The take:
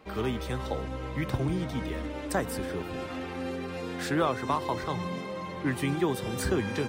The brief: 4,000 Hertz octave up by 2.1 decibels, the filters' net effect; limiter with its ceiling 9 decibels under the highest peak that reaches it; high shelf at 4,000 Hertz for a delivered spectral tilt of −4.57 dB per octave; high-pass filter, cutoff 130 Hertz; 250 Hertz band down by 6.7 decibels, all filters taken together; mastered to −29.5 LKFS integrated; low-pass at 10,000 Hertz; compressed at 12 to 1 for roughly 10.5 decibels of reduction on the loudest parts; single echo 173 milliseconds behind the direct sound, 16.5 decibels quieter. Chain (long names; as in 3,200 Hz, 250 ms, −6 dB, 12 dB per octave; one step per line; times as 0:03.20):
high-pass filter 130 Hz
low-pass filter 10,000 Hz
parametric band 250 Hz −9 dB
high-shelf EQ 4,000 Hz −4 dB
parametric band 4,000 Hz +5 dB
downward compressor 12 to 1, threshold −34 dBFS
brickwall limiter −31 dBFS
single-tap delay 173 ms −16.5 dB
level +11 dB